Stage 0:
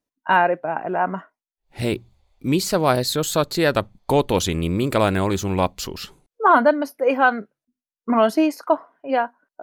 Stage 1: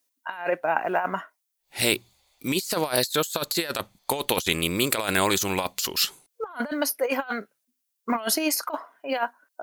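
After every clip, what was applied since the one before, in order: tilt EQ +4 dB/octave; compressor with a negative ratio -23 dBFS, ratio -0.5; trim -1.5 dB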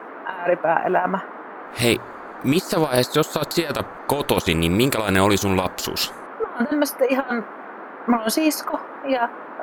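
tilt EQ -2 dB/octave; band noise 230–1500 Hz -41 dBFS; trim +4.5 dB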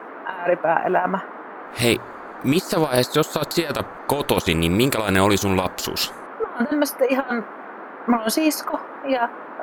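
no audible change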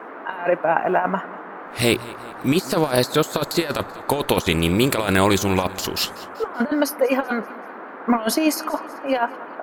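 feedback delay 192 ms, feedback 51%, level -19.5 dB

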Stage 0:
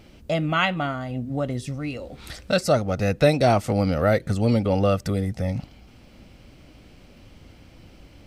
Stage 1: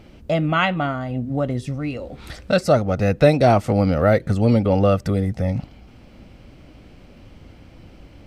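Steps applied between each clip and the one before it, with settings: treble shelf 3.1 kHz -8 dB; trim +4 dB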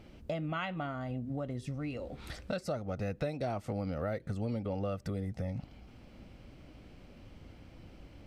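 compression 4:1, threshold -26 dBFS, peak gain reduction 15 dB; trim -8 dB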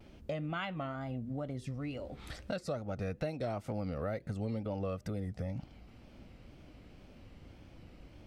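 wow and flutter 89 cents; trim -1.5 dB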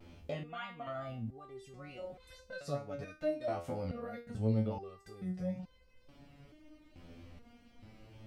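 resonator arpeggio 2.3 Hz 85–510 Hz; trim +9.5 dB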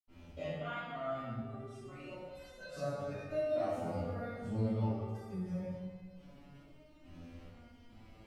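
reverberation RT60 1.6 s, pre-delay 73 ms; trim +7.5 dB

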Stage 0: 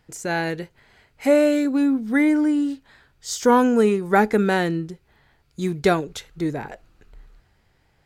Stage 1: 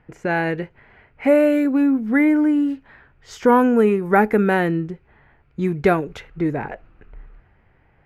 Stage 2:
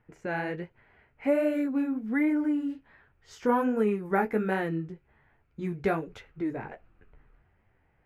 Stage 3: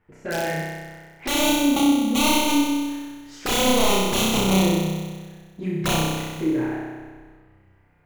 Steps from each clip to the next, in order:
level-controlled noise filter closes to 2.9 kHz, open at -17 dBFS; high-order bell 5.6 kHz -13.5 dB; in parallel at -1 dB: compression, threshold -27 dBFS, peak gain reduction 14.5 dB
flange 1.3 Hz, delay 8.6 ms, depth 8.7 ms, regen -25%; trim -7 dB
integer overflow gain 21.5 dB; touch-sensitive flanger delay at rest 11.8 ms, full sweep at -27 dBFS; flutter echo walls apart 5.4 m, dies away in 1.5 s; trim +5 dB

